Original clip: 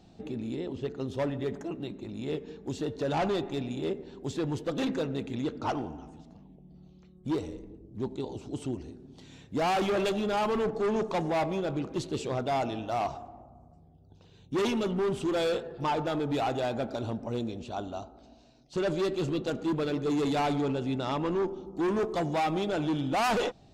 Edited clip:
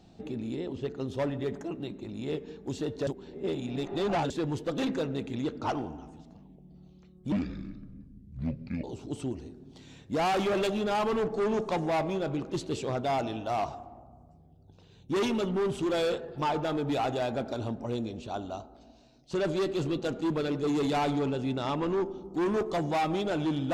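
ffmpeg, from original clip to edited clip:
-filter_complex "[0:a]asplit=5[a][b][c][d][e];[a]atrim=end=3.072[f];[b]atrim=start=3.068:end=4.302,asetpts=PTS-STARTPTS,areverse[g];[c]atrim=start=4.298:end=7.324[h];[d]atrim=start=7.32:end=8.26,asetpts=PTS-STARTPTS,asetrate=27342,aresample=44100,atrim=end_sample=66861,asetpts=PTS-STARTPTS[i];[e]atrim=start=8.256[j];[f][g]acrossfade=d=0.004:c1=hsin:c2=hsin[k];[k][h]acrossfade=d=0.004:c1=hsin:c2=hsin[l];[l][i]acrossfade=d=0.004:c1=hsin:c2=hsin[m];[m][j]acrossfade=d=0.004:c1=hsin:c2=hsin"

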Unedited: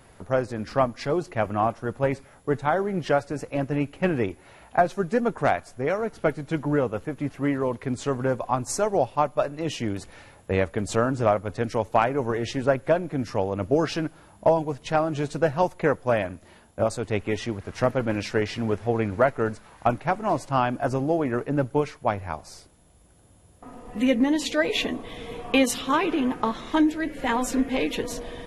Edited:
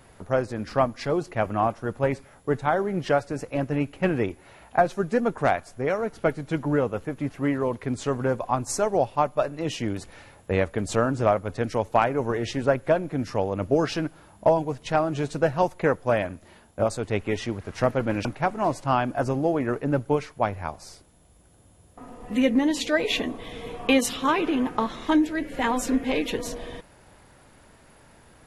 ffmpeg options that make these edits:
-filter_complex "[0:a]asplit=2[a][b];[a]atrim=end=18.252[c];[b]atrim=start=19.898[d];[c][d]acrossfade=d=0.004:c1=hsin:c2=hsin"

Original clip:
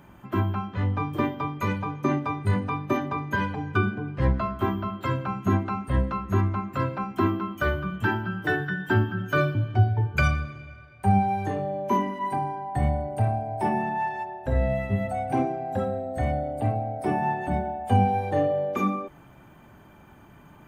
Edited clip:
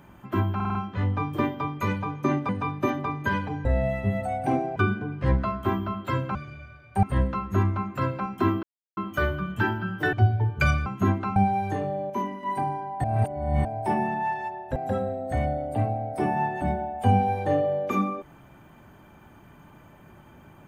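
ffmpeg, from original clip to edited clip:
-filter_complex "[0:a]asplit=19[a][b][c][d][e][f][g][h][i][j][k][l][m][n][o][p][q][r][s];[a]atrim=end=0.602[t];[b]atrim=start=0.548:end=0.602[u];[c]atrim=start=0.548:end=0.602[v];[d]atrim=start=0.548:end=0.602[w];[e]atrim=start=0.548:end=2.292[x];[f]atrim=start=2.558:end=3.722[y];[g]atrim=start=14.508:end=15.622[z];[h]atrim=start=3.718:end=5.312[aa];[i]atrim=start=10.428:end=11.112[ab];[j]atrim=start=5.808:end=7.41,asetpts=PTS-STARTPTS,afade=t=out:st=1.598:d=0.004:c=hsin,apad=pad_dur=0.34[ac];[k]atrim=start=7.41:end=8.572,asetpts=PTS-STARTPTS,afade=t=in:d=0.004:c=hsin[ad];[l]atrim=start=9.698:end=10.432[ae];[m]atrim=start=5.308:end=5.812[af];[n]atrim=start=11.108:end=11.852[ag];[o]atrim=start=11.848:end=12.182,asetpts=PTS-STARTPTS,volume=-5.5dB[ah];[p]atrim=start=12.178:end=12.792[ai];[q]atrim=start=12.788:end=13.402,asetpts=PTS-STARTPTS,areverse[aj];[r]atrim=start=13.398:end=14.512[ak];[s]atrim=start=15.618[al];[t][u]acrossfade=d=0.004:c1=hsin:c2=hsin[am];[am][v]acrossfade=d=0.004:c1=hsin:c2=hsin[an];[an][w]acrossfade=d=0.004:c1=hsin:c2=hsin[ao];[ao][x]acrossfade=d=0.004:c1=hsin:c2=hsin[ap];[ap][y]acrossfade=d=0.004:c1=hsin:c2=hsin[aq];[aq][z]acrossfade=d=0.004:c1=hsin:c2=hsin[ar];[ar][aa]acrossfade=d=0.004:c1=hsin:c2=hsin[as];[as][ab]acrossfade=d=0.004:c1=hsin:c2=hsin[at];[ac][ad]concat=n=2:v=0:a=1[au];[at][au]acrossfade=d=0.004:c1=hsin:c2=hsin[av];[av][ae]acrossfade=d=0.004:c1=hsin:c2=hsin[aw];[aw][af]acrossfade=d=0.004:c1=hsin:c2=hsin[ax];[ax][ag]acrossfade=d=0.004:c1=hsin:c2=hsin[ay];[ay][ah]acrossfade=d=0.004:c1=hsin:c2=hsin[az];[az][ai]acrossfade=d=0.004:c1=hsin:c2=hsin[ba];[ba][aj]acrossfade=d=0.004:c1=hsin:c2=hsin[bb];[bb][ak]acrossfade=d=0.004:c1=hsin:c2=hsin[bc];[bc][al]acrossfade=d=0.004:c1=hsin:c2=hsin"

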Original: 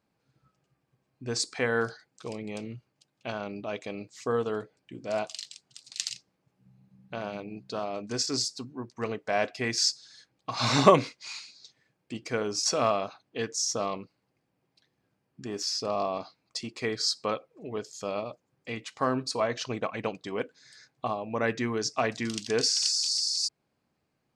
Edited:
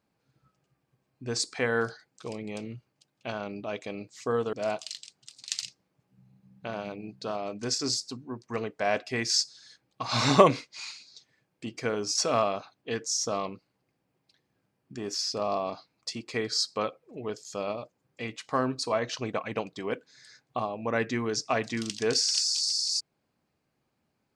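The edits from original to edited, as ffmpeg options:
-filter_complex "[0:a]asplit=2[a][b];[a]atrim=end=4.532[c];[b]atrim=start=5.008[d];[c][d]acrossfade=d=0.004:c1=hsin:c2=hsin"

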